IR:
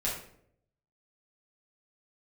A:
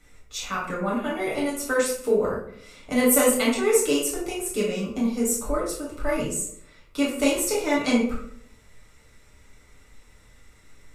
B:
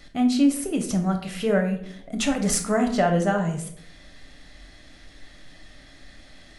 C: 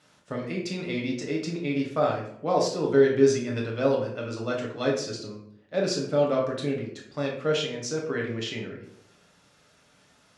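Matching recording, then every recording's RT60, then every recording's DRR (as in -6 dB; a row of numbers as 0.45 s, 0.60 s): A; 0.70 s, 0.70 s, 0.70 s; -6.0 dB, 3.5 dB, -1.5 dB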